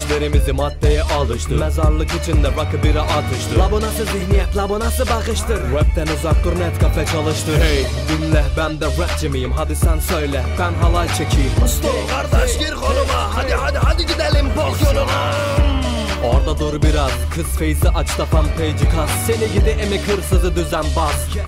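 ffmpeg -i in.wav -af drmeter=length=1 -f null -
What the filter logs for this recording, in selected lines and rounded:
Channel 1: DR: 7.0
Overall DR: 7.0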